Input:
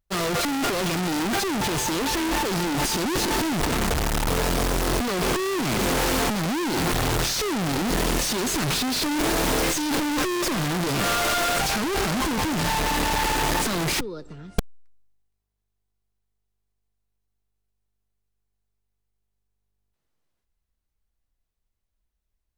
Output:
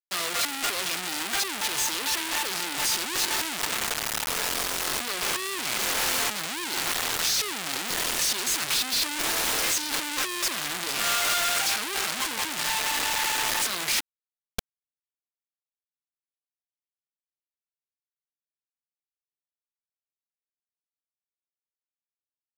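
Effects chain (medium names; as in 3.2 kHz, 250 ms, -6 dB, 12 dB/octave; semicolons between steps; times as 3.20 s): tilt shelf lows -8.5 dB, about 780 Hz; bit crusher 4-bit; trim -7 dB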